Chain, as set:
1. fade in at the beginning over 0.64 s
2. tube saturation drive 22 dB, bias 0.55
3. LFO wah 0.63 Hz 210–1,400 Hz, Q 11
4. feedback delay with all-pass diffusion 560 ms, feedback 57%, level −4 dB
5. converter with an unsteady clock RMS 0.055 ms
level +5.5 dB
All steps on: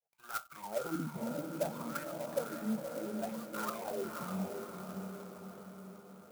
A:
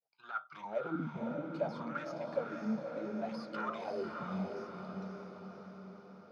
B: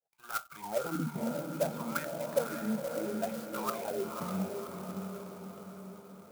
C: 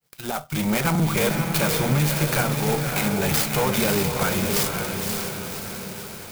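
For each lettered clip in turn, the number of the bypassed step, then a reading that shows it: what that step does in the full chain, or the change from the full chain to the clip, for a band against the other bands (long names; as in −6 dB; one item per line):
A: 5, 4 kHz band −4.5 dB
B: 2, change in crest factor +2.0 dB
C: 3, 500 Hz band −9.0 dB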